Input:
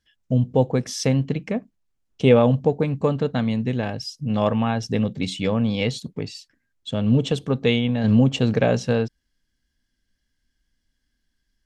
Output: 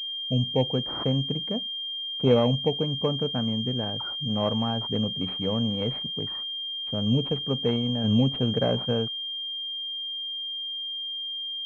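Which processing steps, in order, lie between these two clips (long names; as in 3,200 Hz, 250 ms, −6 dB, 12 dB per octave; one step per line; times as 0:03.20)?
switching amplifier with a slow clock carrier 3,200 Hz
level −5.5 dB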